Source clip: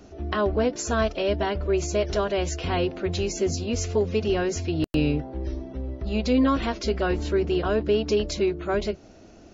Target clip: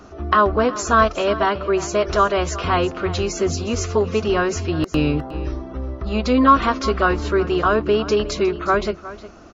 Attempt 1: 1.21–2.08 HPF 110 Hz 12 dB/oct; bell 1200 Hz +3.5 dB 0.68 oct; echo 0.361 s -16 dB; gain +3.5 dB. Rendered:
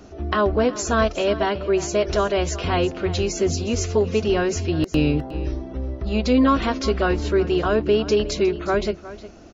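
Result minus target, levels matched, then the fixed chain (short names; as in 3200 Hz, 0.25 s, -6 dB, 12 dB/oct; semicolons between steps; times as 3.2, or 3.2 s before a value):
1000 Hz band -5.0 dB
1.21–2.08 HPF 110 Hz 12 dB/oct; bell 1200 Hz +14.5 dB 0.68 oct; echo 0.361 s -16 dB; gain +3.5 dB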